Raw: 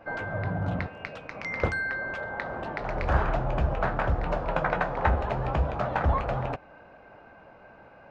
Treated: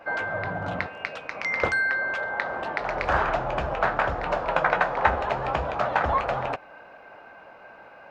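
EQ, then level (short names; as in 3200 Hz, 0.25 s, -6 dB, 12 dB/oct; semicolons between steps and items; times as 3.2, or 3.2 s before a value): low shelf 210 Hz -8 dB; low shelf 430 Hz -8 dB; +7.0 dB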